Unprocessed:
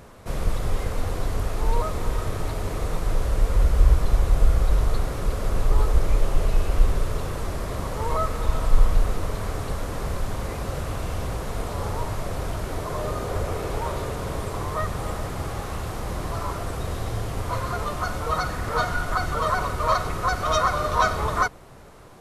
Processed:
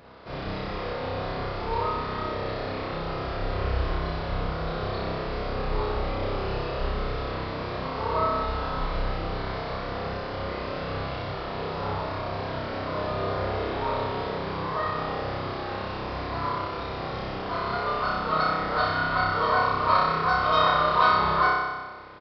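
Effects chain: HPF 230 Hz 6 dB/oct; flutter echo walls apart 5.3 m, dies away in 1.3 s; downsampling 11025 Hz; gain -3 dB

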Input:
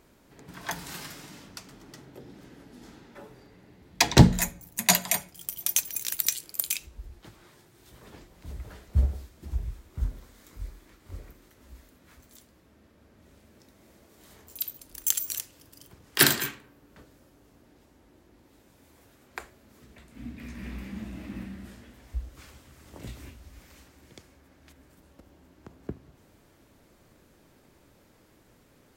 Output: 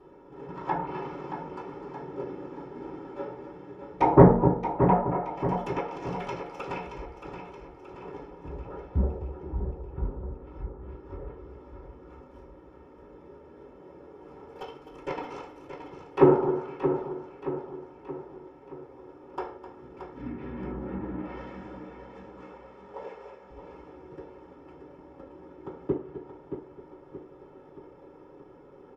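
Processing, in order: median filter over 25 samples; 21.21–23.5 brick-wall FIR band-pass 390–8800 Hz; echo 0.257 s -13 dB; treble ducked by the level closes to 1200 Hz, closed at -32.5 dBFS; comb 2.3 ms, depth 70%; treble ducked by the level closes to 1300 Hz, closed at -32 dBFS; soft clip -11.5 dBFS, distortion -10 dB; feedback echo 0.625 s, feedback 50%, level -9 dB; reverb RT60 0.45 s, pre-delay 3 ms, DRR -11 dB; gain -3 dB

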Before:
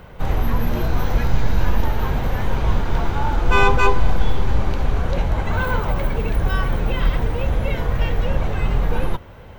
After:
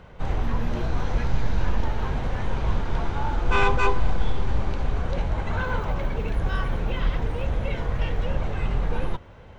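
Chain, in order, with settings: polynomial smoothing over 9 samples; Doppler distortion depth 0.22 ms; gain -5.5 dB

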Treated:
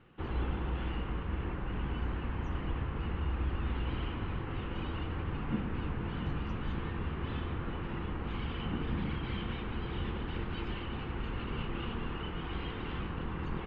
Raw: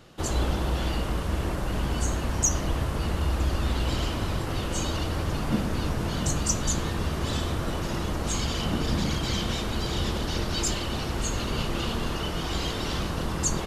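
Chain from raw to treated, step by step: steep low-pass 2900 Hz 36 dB/oct; bell 620 Hz -11 dB 0.34 oct; gain -7.5 dB

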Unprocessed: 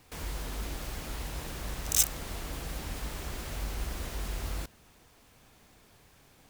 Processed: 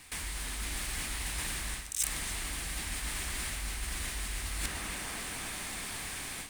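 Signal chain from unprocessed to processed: tape echo 0.296 s, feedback 88%, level -17 dB, low-pass 2300 Hz; AGC gain up to 13.5 dB; graphic EQ 125/500/2000/4000 Hz -5/-8/+8/+4 dB; reverse; compressor 16:1, threshold -37 dBFS, peak gain reduction 26 dB; reverse; bell 9000 Hz +13.5 dB 0.57 oct; notch 1400 Hz, Q 26; gain +3 dB

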